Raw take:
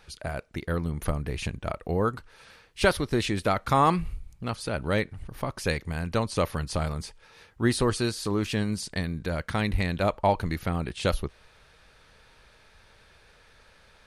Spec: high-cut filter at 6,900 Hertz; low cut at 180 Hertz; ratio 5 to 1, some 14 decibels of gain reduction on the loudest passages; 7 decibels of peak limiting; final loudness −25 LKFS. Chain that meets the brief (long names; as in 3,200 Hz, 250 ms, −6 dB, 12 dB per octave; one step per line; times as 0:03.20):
high-pass filter 180 Hz
low-pass filter 6,900 Hz
downward compressor 5 to 1, threshold −33 dBFS
level +15 dB
brickwall limiter −10.5 dBFS